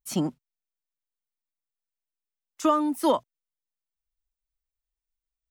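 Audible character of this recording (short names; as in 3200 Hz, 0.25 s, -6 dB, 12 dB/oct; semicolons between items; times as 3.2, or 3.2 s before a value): noise floor -91 dBFS; spectral tilt -5.5 dB/oct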